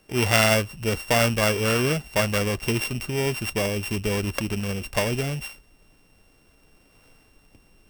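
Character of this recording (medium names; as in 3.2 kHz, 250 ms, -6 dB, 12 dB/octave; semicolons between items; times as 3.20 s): a buzz of ramps at a fixed pitch in blocks of 16 samples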